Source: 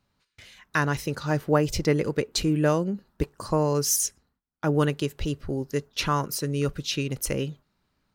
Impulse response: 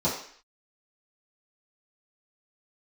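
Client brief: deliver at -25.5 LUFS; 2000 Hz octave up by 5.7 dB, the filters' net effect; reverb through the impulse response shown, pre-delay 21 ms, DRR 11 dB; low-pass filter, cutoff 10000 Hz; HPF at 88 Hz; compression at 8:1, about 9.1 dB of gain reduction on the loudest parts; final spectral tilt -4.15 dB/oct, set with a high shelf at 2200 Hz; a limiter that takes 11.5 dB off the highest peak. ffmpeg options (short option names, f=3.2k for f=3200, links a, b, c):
-filter_complex "[0:a]highpass=88,lowpass=10k,equalizer=f=2k:t=o:g=4,highshelf=f=2.2k:g=6.5,acompressor=threshold=-25dB:ratio=8,alimiter=limit=-20dB:level=0:latency=1,asplit=2[a][b];[1:a]atrim=start_sample=2205,adelay=21[c];[b][c]afir=irnorm=-1:irlink=0,volume=-22.5dB[d];[a][d]amix=inputs=2:normalize=0,volume=6dB"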